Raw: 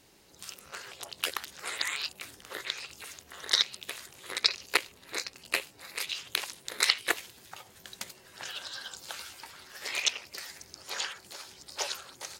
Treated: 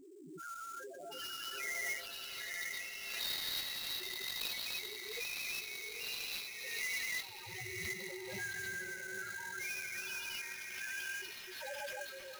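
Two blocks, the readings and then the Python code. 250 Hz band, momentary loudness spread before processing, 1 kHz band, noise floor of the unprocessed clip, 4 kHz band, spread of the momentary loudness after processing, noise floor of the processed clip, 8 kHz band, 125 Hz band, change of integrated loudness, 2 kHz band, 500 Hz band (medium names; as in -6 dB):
-3.0 dB, 19 LU, -8.5 dB, -58 dBFS, -9.0 dB, 8 LU, -50 dBFS, -7.0 dB, no reading, -7.0 dB, -3.5 dB, -4.5 dB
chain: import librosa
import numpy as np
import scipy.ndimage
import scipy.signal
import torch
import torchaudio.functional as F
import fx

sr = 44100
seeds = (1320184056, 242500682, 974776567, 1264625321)

p1 = fx.spec_steps(x, sr, hold_ms=400)
p2 = fx.rider(p1, sr, range_db=10, speed_s=0.5)
p3 = p1 + (p2 * 10.0 ** (2.5 / 20.0))
p4 = fx.spec_topn(p3, sr, count=1)
p5 = p4 + fx.echo_diffused(p4, sr, ms=863, feedback_pct=45, wet_db=-4.0, dry=0)
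p6 = fx.sample_hold(p5, sr, seeds[0], rate_hz=8200.0, jitter_pct=20)
p7 = fx.doubler(p6, sr, ms=19.0, db=-11)
p8 = fx.pre_swell(p7, sr, db_per_s=35.0)
y = p8 * 10.0 ** (9.0 / 20.0)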